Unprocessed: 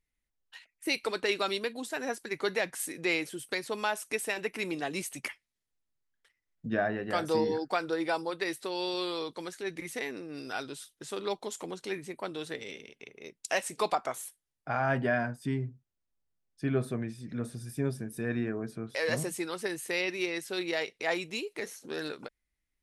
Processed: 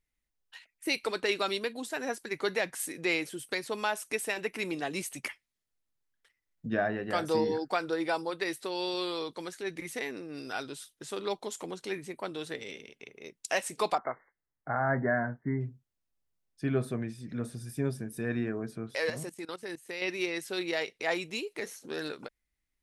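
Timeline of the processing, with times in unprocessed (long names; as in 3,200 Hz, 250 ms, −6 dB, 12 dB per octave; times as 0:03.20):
0:13.98–0:15.61: linear-phase brick-wall low-pass 2,200 Hz
0:19.10–0:20.02: output level in coarse steps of 19 dB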